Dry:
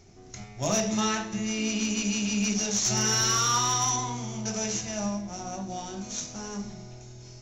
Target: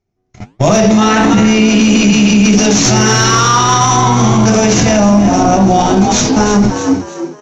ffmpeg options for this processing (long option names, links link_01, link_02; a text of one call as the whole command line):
ffmpeg -i in.wav -filter_complex "[0:a]agate=range=-56dB:threshold=-36dB:ratio=16:detection=peak,aemphasis=mode=reproduction:type=75fm,acontrast=90,flanger=delay=4.9:depth=9.4:regen=-84:speed=1.5:shape=triangular,asplit=4[link_01][link_02][link_03][link_04];[link_02]adelay=314,afreqshift=68,volume=-13.5dB[link_05];[link_03]adelay=628,afreqshift=136,volume=-23.1dB[link_06];[link_04]adelay=942,afreqshift=204,volume=-32.8dB[link_07];[link_01][link_05][link_06][link_07]amix=inputs=4:normalize=0,alimiter=level_in=35.5dB:limit=-1dB:release=50:level=0:latency=1,volume=-1dB" out.wav